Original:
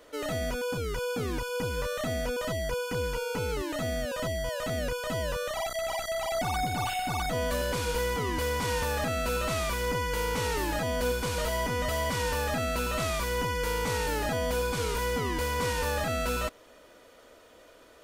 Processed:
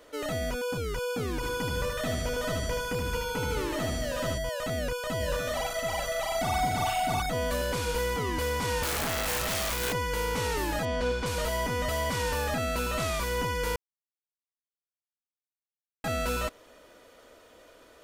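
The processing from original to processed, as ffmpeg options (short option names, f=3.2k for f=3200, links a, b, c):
-filter_complex "[0:a]asplit=3[a][b][c];[a]afade=t=out:st=1.42:d=0.02[d];[b]aecho=1:1:76|152|228|304|380|456|532:0.631|0.341|0.184|0.0994|0.0537|0.029|0.0156,afade=t=in:st=1.42:d=0.02,afade=t=out:st=4.37:d=0.02[e];[c]afade=t=in:st=4.37:d=0.02[f];[d][e][f]amix=inputs=3:normalize=0,asplit=3[g][h][i];[g]afade=t=out:st=5.19:d=0.02[j];[h]aecho=1:1:42|373|727:0.501|0.15|0.447,afade=t=in:st=5.19:d=0.02,afade=t=out:st=7.2:d=0.02[k];[i]afade=t=in:st=7.2:d=0.02[l];[j][k][l]amix=inputs=3:normalize=0,asettb=1/sr,asplit=3[m][n][o];[m]atrim=end=8.834[p];[n]atrim=start=8.83:end=9.93,asetpts=PTS-STARTPTS,afade=t=in:d=0.004:c=qsin,afade=t=out:st=1.096:d=0.004:c=qsin,aeval=exprs='(mod(15.8*val(0)+1,2)-1)/15.8':c=same[q];[o]atrim=start=9.926[r];[p][q]acrossfade=d=0.004:c1=hsin:c2=qsin[s];[s][r]acrossfade=d=0.004:c1=qsin:c2=hsin,asettb=1/sr,asplit=3[t][u][v];[t]atrim=end=10.854[w];[u]atrim=start=10.85:end=11.26,asetpts=PTS-STARTPTS,afade=t=in:d=0.004:c=qsin,afade=t=out:st=0.406:d=0.004:c=qsin,lowpass=5.1k[x];[v]atrim=start=11.256[y];[w][x]acrossfade=d=0.004:c1=hsin:c2=qsin[z];[z][y]acrossfade=d=0.004:c1=qsin:c2=hsin,asplit=3[aa][ab][ac];[aa]atrim=end=13.76,asetpts=PTS-STARTPTS,afade=t=out:st=13.756:d=0.004:c=hsin[ad];[ab]atrim=start=13.76:end=16.04,asetpts=PTS-STARTPTS,volume=0[ae];[ac]atrim=start=16.04,asetpts=PTS-STARTPTS,afade=t=in:d=0.004:c=hsin[af];[ad][ae][af]concat=n=3:v=0:a=1"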